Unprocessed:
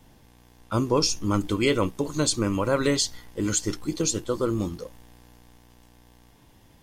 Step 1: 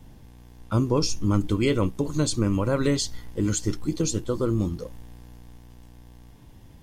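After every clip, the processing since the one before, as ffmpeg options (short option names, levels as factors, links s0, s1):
-filter_complex "[0:a]lowshelf=f=280:g=10.5,asplit=2[s0][s1];[s1]acompressor=threshold=0.0501:ratio=6,volume=0.794[s2];[s0][s2]amix=inputs=2:normalize=0,volume=0.501"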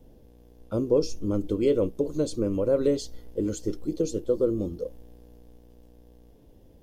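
-af "equalizer=f=125:t=o:w=1:g=-7,equalizer=f=500:t=o:w=1:g=12,equalizer=f=1000:t=o:w=1:g=-9,equalizer=f=2000:t=o:w=1:g=-8,equalizer=f=4000:t=o:w=1:g=-3,equalizer=f=8000:t=o:w=1:g=-7,volume=0.596"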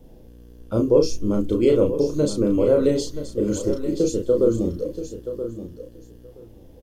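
-filter_complex "[0:a]asplit=2[s0][s1];[s1]adelay=34,volume=0.668[s2];[s0][s2]amix=inputs=2:normalize=0,asplit=2[s3][s4];[s4]aecho=0:1:976|1952:0.282|0.0423[s5];[s3][s5]amix=inputs=2:normalize=0,volume=1.68"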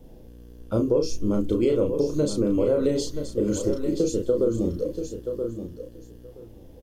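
-af "acompressor=threshold=0.112:ratio=3"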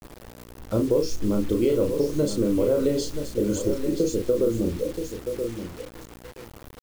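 -af "acrusher=bits=6:mix=0:aa=0.000001"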